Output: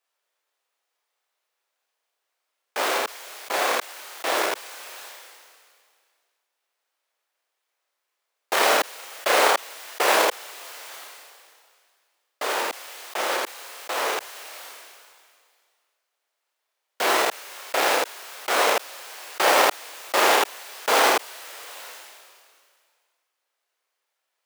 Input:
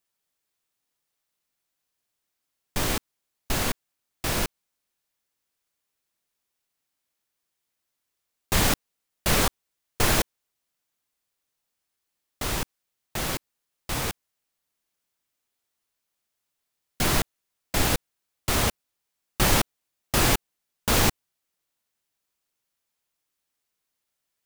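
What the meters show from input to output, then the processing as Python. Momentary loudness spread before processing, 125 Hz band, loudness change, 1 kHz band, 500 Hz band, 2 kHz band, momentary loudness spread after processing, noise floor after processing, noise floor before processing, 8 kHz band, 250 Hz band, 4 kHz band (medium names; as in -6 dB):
13 LU, under -25 dB, +3.0 dB, +9.0 dB, +8.0 dB, +6.5 dB, 19 LU, -80 dBFS, -82 dBFS, 0.0 dB, -5.5 dB, +3.0 dB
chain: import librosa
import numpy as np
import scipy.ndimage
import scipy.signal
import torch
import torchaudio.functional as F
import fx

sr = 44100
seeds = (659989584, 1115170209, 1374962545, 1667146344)

y = fx.halfwave_hold(x, sr)
y = scipy.signal.sosfilt(scipy.signal.butter(4, 460.0, 'highpass', fs=sr, output='sos'), y)
y = fx.high_shelf(y, sr, hz=3300.0, db=-8.0)
y = fx.room_early_taps(y, sr, ms=(31, 80), db=(-4.0, -5.0))
y = fx.sustainer(y, sr, db_per_s=28.0)
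y = y * 10.0 ** (1.5 / 20.0)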